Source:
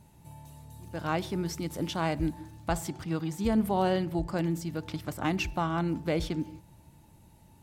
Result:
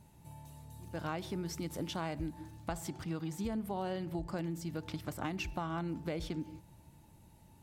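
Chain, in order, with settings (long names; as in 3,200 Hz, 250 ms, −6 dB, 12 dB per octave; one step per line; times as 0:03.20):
downward compressor 6 to 1, threshold −31 dBFS, peak gain reduction 10 dB
level −3 dB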